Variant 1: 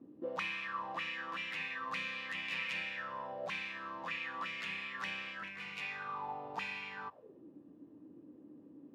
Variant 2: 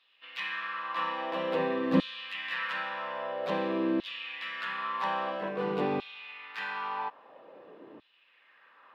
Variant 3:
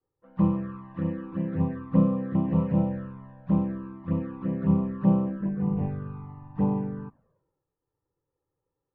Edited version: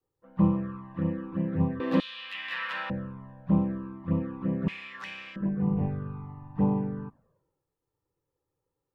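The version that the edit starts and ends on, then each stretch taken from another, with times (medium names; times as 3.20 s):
3
1.80–2.90 s: from 2
4.68–5.36 s: from 1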